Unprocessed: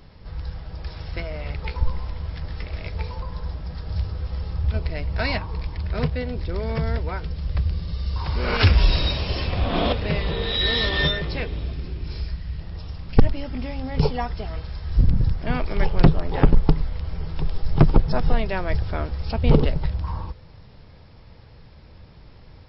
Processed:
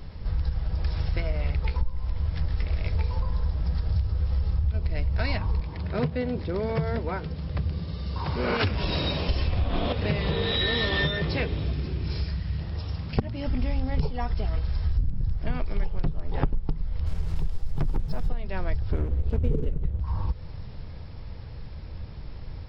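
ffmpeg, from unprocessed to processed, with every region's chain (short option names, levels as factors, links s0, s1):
-filter_complex "[0:a]asettb=1/sr,asplit=3[s0][s1][s2];[s0]atrim=end=5.604[s3];[s1]atrim=start=5.6:end=9.29,asetpts=PTS-STARTPTS,afade=t=in:d=0.004:c=qsin,afade=t=out:st=3.686:d=0.004:c=qsin,highpass=160,lowpass=4800,equalizer=f=2800:t=o:w=3:g=-4[s4];[s2]atrim=start=9.286[s5];[s3][s4]acrossfade=d=0.004:c1=hsin:c2=qsin[s6];[s6][s5]acrossfade=d=0.004:c1=qsin:c2=hsin,asettb=1/sr,asplit=3[s7][s8][s9];[s7]atrim=end=9.864[s10];[s8]atrim=start=9.86:end=13.46,asetpts=PTS-STARTPTS,afade=t=in:d=0.004:c=qsin,afade=t=out:st=3.596:d=0.004:c=qsin,highpass=99,acrossover=split=3500[s11][s12];[s12]acompressor=threshold=0.0224:ratio=4:attack=1:release=60[s13];[s11][s13]amix=inputs=2:normalize=0[s14];[s9]atrim=start=13.456[s15];[s10][s14]acrossfade=d=0.004:c1=hsin:c2=qsin[s16];[s16][s15]acrossfade=d=0.004:c1=qsin:c2=hsin,asettb=1/sr,asplit=3[s17][s18][s19];[s17]atrim=end=17.064[s20];[s18]atrim=start=17.06:end=18.29,asetpts=PTS-STARTPTS,afade=t=in:d=0.004:c=qsin,afade=t=out:st=1.226:d=0.004:c=qsin,volume=4.22,asoftclip=hard,volume=0.237,acrusher=bits=6:mix=0:aa=0.5[s21];[s19]atrim=start=18.286[s22];[s20][s21]acrossfade=d=0.004:c1=hsin:c2=qsin[s23];[s23][s22]acrossfade=d=0.004:c1=qsin:c2=hsin,asettb=1/sr,asplit=3[s24][s25][s26];[s24]atrim=end=18.924[s27];[s25]atrim=start=18.92:end=20,asetpts=PTS-STARTPTS,afade=t=in:d=0.004:c=qsin,afade=t=out:st=1.076:d=0.004:c=qsin,lowpass=f=3600:w=0.5412,lowpass=f=3600:w=1.3066,lowshelf=f=570:t=q:w=3:g=8,aeval=exprs='sgn(val(0))*max(abs(val(0))-0.0355,0)':c=same[s28];[s26]atrim=start=19.996[s29];[s27][s28]acrossfade=d=0.004:c1=hsin:c2=qsin[s30];[s30][s29]acrossfade=d=0.004:c1=qsin:c2=hsin,lowshelf=f=140:g=9.5,bandreject=f=56.15:t=h:w=4,bandreject=f=112.3:t=h:w=4,bandreject=f=168.45:t=h:w=4,bandreject=f=224.6:t=h:w=4,acompressor=threshold=0.0708:ratio=10,volume=1.26"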